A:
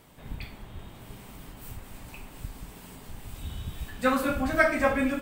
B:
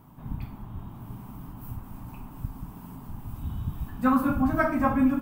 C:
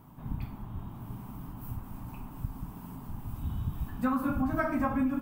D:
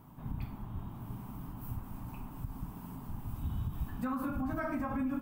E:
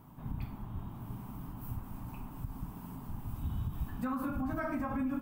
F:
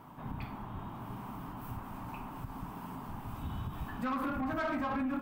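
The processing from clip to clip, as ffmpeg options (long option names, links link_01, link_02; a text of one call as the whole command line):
ffmpeg -i in.wav -af "equalizer=frequency=125:width_type=o:width=1:gain=6,equalizer=frequency=250:width_type=o:width=1:gain=6,equalizer=frequency=500:width_type=o:width=1:gain=-11,equalizer=frequency=1000:width_type=o:width=1:gain=8,equalizer=frequency=2000:width_type=o:width=1:gain=-11,equalizer=frequency=4000:width_type=o:width=1:gain=-11,equalizer=frequency=8000:width_type=o:width=1:gain=-12,volume=1.5dB" out.wav
ffmpeg -i in.wav -af "acompressor=threshold=-24dB:ratio=6,volume=-1dB" out.wav
ffmpeg -i in.wav -af "alimiter=level_in=1.5dB:limit=-24dB:level=0:latency=1:release=66,volume=-1.5dB,volume=-1.5dB" out.wav
ffmpeg -i in.wav -af anull out.wav
ffmpeg -i in.wav -filter_complex "[0:a]asplit=2[link_01][link_02];[link_02]highpass=frequency=720:poles=1,volume=16dB,asoftclip=type=tanh:threshold=-26.5dB[link_03];[link_01][link_03]amix=inputs=2:normalize=0,lowpass=frequency=2400:poles=1,volume=-6dB" out.wav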